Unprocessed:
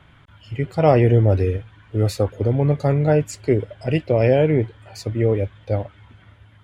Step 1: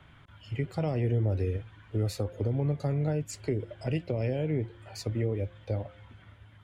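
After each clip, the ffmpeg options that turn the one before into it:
-filter_complex "[0:a]acompressor=threshold=-23dB:ratio=2,bandreject=f=174.7:t=h:w=4,bandreject=f=349.4:t=h:w=4,bandreject=f=524.1:t=h:w=4,bandreject=f=698.8:t=h:w=4,bandreject=f=873.5:t=h:w=4,bandreject=f=1.0482k:t=h:w=4,acrossover=split=330|3000[a][b][c];[b]acompressor=threshold=-30dB:ratio=4[d];[a][d][c]amix=inputs=3:normalize=0,volume=-4.5dB"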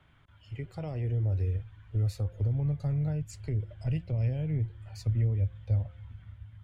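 -af "asubboost=boost=10.5:cutoff=110,volume=-7.5dB"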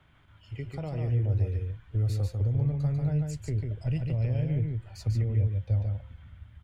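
-af "aecho=1:1:145:0.631,volume=1dB"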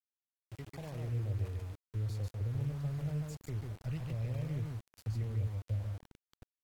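-af "aeval=exprs='val(0)*gte(abs(val(0)),0.0126)':c=same,volume=-9dB" -ar 48000 -c:a aac -b:a 64k

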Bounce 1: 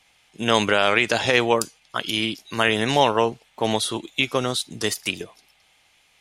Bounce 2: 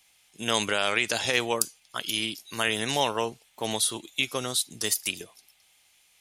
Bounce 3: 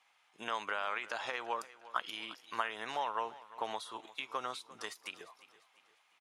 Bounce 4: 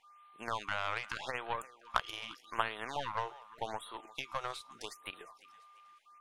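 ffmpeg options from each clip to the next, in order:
-af "aemphasis=mode=production:type=75kf,volume=-9dB"
-af "acompressor=threshold=-30dB:ratio=6,bandpass=f=1.1k:t=q:w=1.9:csg=0,aecho=1:1:349|698|1047|1396:0.126|0.0554|0.0244|0.0107,volume=5dB"
-af "aeval=exprs='val(0)+0.00158*sin(2*PI*1200*n/s)':c=same,aeval=exprs='0.158*(cos(1*acos(clip(val(0)/0.158,-1,1)))-cos(1*PI/2))+0.0355*(cos(3*acos(clip(val(0)/0.158,-1,1)))-cos(3*PI/2))+0.00398*(cos(5*acos(clip(val(0)/0.158,-1,1)))-cos(5*PI/2))+0.00562*(cos(8*acos(clip(val(0)/0.158,-1,1)))-cos(8*PI/2))':c=same,afftfilt=real='re*(1-between(b*sr/1024,210*pow(6400/210,0.5+0.5*sin(2*PI*0.83*pts/sr))/1.41,210*pow(6400/210,0.5+0.5*sin(2*PI*0.83*pts/sr))*1.41))':imag='im*(1-between(b*sr/1024,210*pow(6400/210,0.5+0.5*sin(2*PI*0.83*pts/sr))/1.41,210*pow(6400/210,0.5+0.5*sin(2*PI*0.83*pts/sr))*1.41))':win_size=1024:overlap=0.75,volume=6dB"

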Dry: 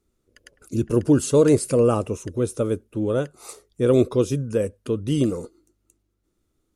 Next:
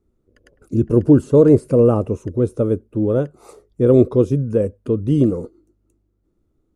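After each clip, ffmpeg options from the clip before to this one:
-filter_complex "[0:a]tiltshelf=f=1.4k:g=9,acrossover=split=1900[a][b];[b]alimiter=level_in=10dB:limit=-24dB:level=0:latency=1:release=151,volume=-10dB[c];[a][c]amix=inputs=2:normalize=0,volume=-2.5dB"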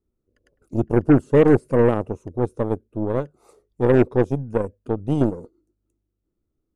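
-af "aeval=exprs='0.891*(cos(1*acos(clip(val(0)/0.891,-1,1)))-cos(1*PI/2))+0.0501*(cos(6*acos(clip(val(0)/0.891,-1,1)))-cos(6*PI/2))+0.0708*(cos(7*acos(clip(val(0)/0.891,-1,1)))-cos(7*PI/2))':c=same,volume=-3.5dB"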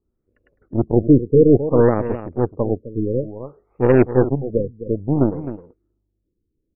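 -af "aecho=1:1:260:0.251,afftfilt=real='re*lt(b*sr/1024,510*pow(2900/510,0.5+0.5*sin(2*PI*0.58*pts/sr)))':imag='im*lt(b*sr/1024,510*pow(2900/510,0.5+0.5*sin(2*PI*0.58*pts/sr)))':win_size=1024:overlap=0.75,volume=2.5dB"

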